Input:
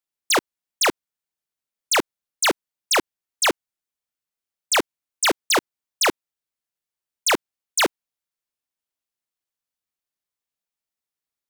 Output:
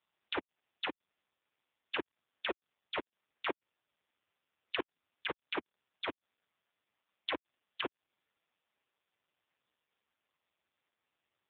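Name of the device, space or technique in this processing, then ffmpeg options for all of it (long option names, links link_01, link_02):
voicemail: -af "highpass=360,lowpass=3100,acompressor=threshold=-34dB:ratio=8,volume=8dB" -ar 8000 -c:a libopencore_amrnb -b:a 4750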